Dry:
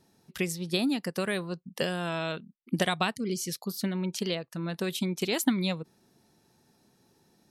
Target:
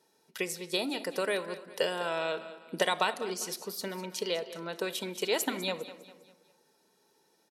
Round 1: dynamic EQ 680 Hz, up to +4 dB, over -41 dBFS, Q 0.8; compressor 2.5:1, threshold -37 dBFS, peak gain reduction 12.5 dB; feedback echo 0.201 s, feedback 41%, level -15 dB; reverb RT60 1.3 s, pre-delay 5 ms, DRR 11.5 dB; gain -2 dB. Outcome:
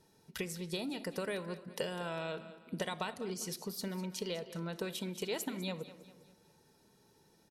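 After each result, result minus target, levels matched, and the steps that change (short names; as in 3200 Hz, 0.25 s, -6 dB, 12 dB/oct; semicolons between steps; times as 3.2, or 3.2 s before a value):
compressor: peak gain reduction +12.5 dB; 250 Hz band +5.5 dB
remove: compressor 2.5:1, threshold -37 dBFS, peak gain reduction 12.5 dB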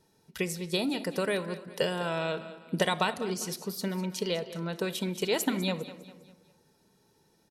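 250 Hz band +5.0 dB
add after dynamic EQ: HPF 340 Hz 12 dB/oct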